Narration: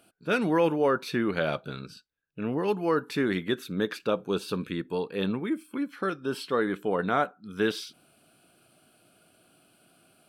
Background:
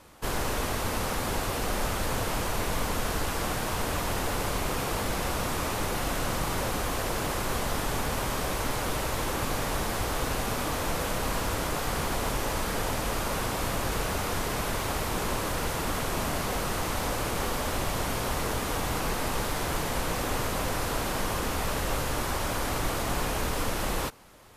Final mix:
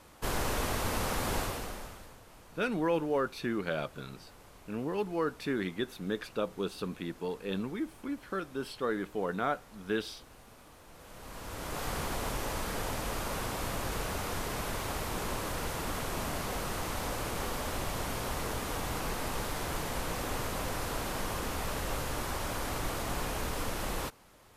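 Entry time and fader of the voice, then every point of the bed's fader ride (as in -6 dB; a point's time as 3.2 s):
2.30 s, -6.0 dB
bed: 1.4 s -2.5 dB
2.2 s -25.5 dB
10.88 s -25.5 dB
11.83 s -5.5 dB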